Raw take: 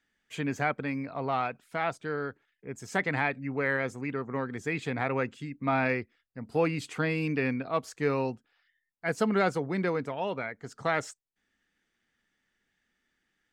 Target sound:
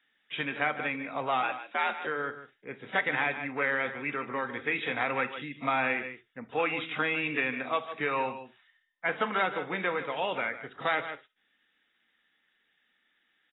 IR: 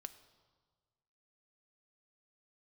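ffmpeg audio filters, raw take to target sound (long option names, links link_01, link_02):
-filter_complex "[0:a]aemphasis=mode=production:type=riaa[link_01];[1:a]atrim=start_sample=2205,afade=type=out:start_time=0.13:duration=0.01,atrim=end_sample=6174[link_02];[link_01][link_02]afir=irnorm=-1:irlink=0,asplit=3[link_03][link_04][link_05];[link_03]afade=type=out:start_time=1.42:duration=0.02[link_06];[link_04]afreqshift=77,afade=type=in:start_time=1.42:duration=0.02,afade=type=out:start_time=2.06:duration=0.02[link_07];[link_05]afade=type=in:start_time=2.06:duration=0.02[link_08];[link_06][link_07][link_08]amix=inputs=3:normalize=0,asettb=1/sr,asplit=3[link_09][link_10][link_11];[link_09]atrim=end=8.134[link_12];[link_10]atrim=start=8.13:end=9.46,asetpts=PTS-STARTPTS,afade=type=in:duration=0.004:curve=qsin,afade=type=out:start_time=1.326:duration=0.004:curve=qsin,equalizer=frequency=990:width_type=o:width=0.32:gain=6[link_13];[link_11]atrim=start=9.456[link_14];[link_12][link_13]acrossfade=duration=0.004:curve1=hsin:curve2=qsin[link_15];[link_15][link_14]acrossfade=duration=0.004:curve1=qsin:curve2=hsin,aecho=1:1:150:0.211,acrossover=split=580|5100[link_16][link_17][link_18];[link_16]acompressor=threshold=-45dB:ratio=4[link_19];[link_17]acompressor=threshold=-34dB:ratio=4[link_20];[link_18]acompressor=threshold=-58dB:ratio=4[link_21];[link_19][link_20][link_21]amix=inputs=3:normalize=0,volume=8.5dB" -ar 16000 -c:a aac -b:a 16k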